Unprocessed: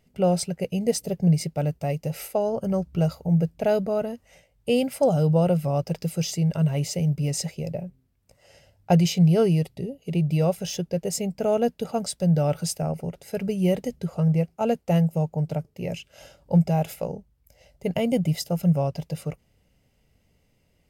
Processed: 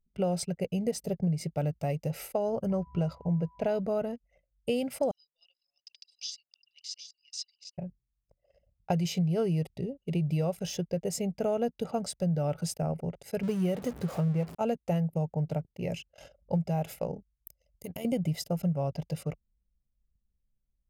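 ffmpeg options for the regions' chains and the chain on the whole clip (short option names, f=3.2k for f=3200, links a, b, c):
-filter_complex "[0:a]asettb=1/sr,asplit=3[a][b][c];[a]atrim=end=2.714[d];[b]atrim=start=2.71:end=3.8,asetpts=PTS-STARTPTS,afade=t=in:d=0.004:c=qsin,afade=t=out:st=1.086:d=0.004:c=qsin,highshelf=f=8.4k:g=-10.5,aeval=exprs='val(0)+0.00316*sin(2*PI*990*n/s)':c=same[e];[c]atrim=start=3.796[f];[d][e]acrossfade=d=0.004:c1=hsin:c2=qsin[g];[g][f]acrossfade=d=0.004:c1=qsin:c2=hsin,asettb=1/sr,asplit=3[h][i][j];[h]atrim=end=5.114[k];[i]atrim=start=5.11:end=7.78,asetpts=PTS-STARTPTS,afade=t=in:d=0.004:c=qsin,afade=t=out:st=2.666:d=0.004:c=qsin,asuperpass=centerf=4300:order=4:qfactor=1.7,aecho=1:1:763:0.376,atrim=end_sample=117747[l];[j]atrim=start=7.776[m];[k][l]acrossfade=d=0.004:c1=hsin:c2=qsin[n];[n][m]acrossfade=d=0.004:c1=qsin:c2=hsin,asettb=1/sr,asplit=3[o][p][q];[o]atrim=end=13.434[r];[p]atrim=start=13.43:end=14.55,asetpts=PTS-STARTPTS,afade=t=in:d=0.004:c=qsin,afade=t=out:st=1.116:d=0.004:c=qsin,aeval=exprs='val(0)+0.5*0.02*sgn(val(0))':c=same,highpass=81[s];[q]atrim=start=14.546[t];[r][s]acrossfade=d=0.004:c1=hsin:c2=qsin[u];[u][t]acrossfade=d=0.004:c1=qsin:c2=hsin,asettb=1/sr,asplit=3[v][w][x];[v]atrim=end=17.144[y];[w]atrim=start=17.14:end=18.05,asetpts=PTS-STARTPTS,afade=t=in:d=0.004:c=qsin,afade=t=out:st=0.906:d=0.004:c=qsin,aemphasis=mode=production:type=75fm,acompressor=threshold=-30dB:ratio=16:attack=3.2:release=140:knee=1:detection=peak,tremolo=f=84:d=0.519[z];[x]atrim=start=18.046[aa];[y][z]acrossfade=d=0.004:c1=hsin:c2=qsin[ab];[ab][aa]acrossfade=d=0.004:c1=qsin:c2=hsin,acompressor=threshold=-22dB:ratio=6,anlmdn=0.0158,adynamicequalizer=threshold=0.00501:dfrequency=2300:dqfactor=0.7:tfrequency=2300:tqfactor=0.7:attack=5:release=100:ratio=0.375:range=2:mode=cutabove:tftype=highshelf,volume=-3dB"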